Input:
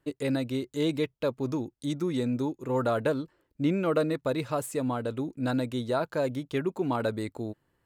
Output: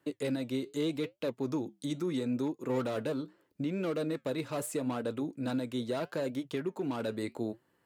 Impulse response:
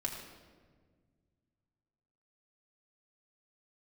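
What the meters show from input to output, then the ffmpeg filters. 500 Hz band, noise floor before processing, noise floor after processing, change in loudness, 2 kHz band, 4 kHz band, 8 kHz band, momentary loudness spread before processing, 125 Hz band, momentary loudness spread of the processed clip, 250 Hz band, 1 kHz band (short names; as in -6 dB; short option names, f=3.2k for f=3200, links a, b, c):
-5.5 dB, -77 dBFS, -74 dBFS, -5.0 dB, -6.0 dB, -3.5 dB, -1.5 dB, 6 LU, -7.0 dB, 4 LU, -4.0 dB, -8.0 dB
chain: -filter_complex "[0:a]acrossover=split=490|2700[a][b][c];[b]asoftclip=type=hard:threshold=-35dB[d];[a][d][c]amix=inputs=3:normalize=0,alimiter=level_in=3dB:limit=-24dB:level=0:latency=1:release=478,volume=-3dB,highpass=150,flanger=delay=3.2:depth=5.8:regen=-80:speed=0.78:shape=triangular,volume=7dB"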